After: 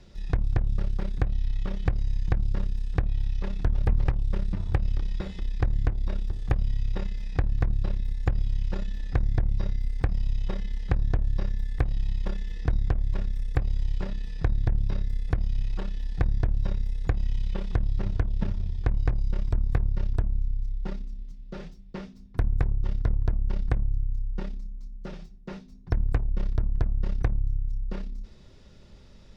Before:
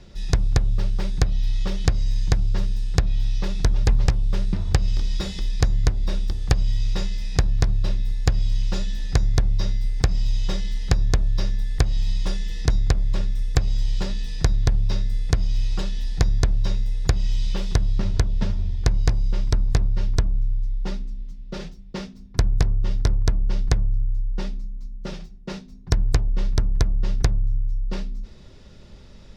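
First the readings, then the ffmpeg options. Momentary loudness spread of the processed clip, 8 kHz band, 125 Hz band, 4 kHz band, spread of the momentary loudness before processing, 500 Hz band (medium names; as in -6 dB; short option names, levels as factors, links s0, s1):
9 LU, no reading, -5.0 dB, -16.0 dB, 9 LU, -5.5 dB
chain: -filter_complex "[0:a]aeval=exprs='0.708*(cos(1*acos(clip(val(0)/0.708,-1,1)))-cos(1*PI/2))+0.0562*(cos(8*acos(clip(val(0)/0.708,-1,1)))-cos(8*PI/2))':c=same,acrossover=split=2600[s0][s1];[s1]acompressor=threshold=0.00224:ratio=4:attack=1:release=60[s2];[s0][s2]amix=inputs=2:normalize=0,volume=0.531"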